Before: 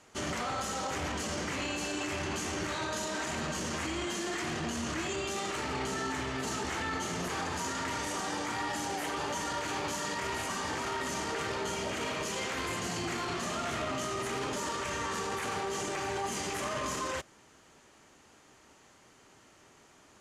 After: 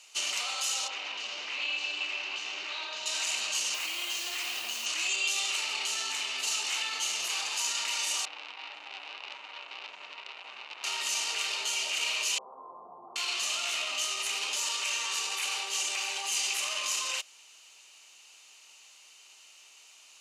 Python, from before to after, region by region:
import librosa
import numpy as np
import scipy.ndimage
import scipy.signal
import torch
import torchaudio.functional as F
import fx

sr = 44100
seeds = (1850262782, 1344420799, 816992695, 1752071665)

y = fx.chain(x, sr, fx.highpass(hz=170.0, slope=24),
    fx.air_absorb(metres=220.0),
    fx.doppler_dist(depth_ms=0.12), at=(0.88, 3.06))
y = fx.chain(y, sr, fx.lowpass(hz=3400.0, slope=6),
    fx.quant_dither(seeds[0], bits=8, dither='none'), at=(3.74, 4.86))
y = fx.chain(y, sr, fx.lowpass(hz=1100.0, slope=12),
    fx.transformer_sat(knee_hz=2000.0), at=(8.25, 10.84))
y = fx.chain(y, sr, fx.steep_lowpass(hz=1100.0, slope=72),
    fx.notch(hz=320.0, q=6.8), at=(12.38, 13.16))
y = scipy.signal.sosfilt(scipy.signal.butter(2, 1000.0, 'highpass', fs=sr, output='sos'), y)
y = fx.high_shelf_res(y, sr, hz=2200.0, db=8.0, q=3.0)
y = fx.notch(y, sr, hz=3300.0, q=8.4)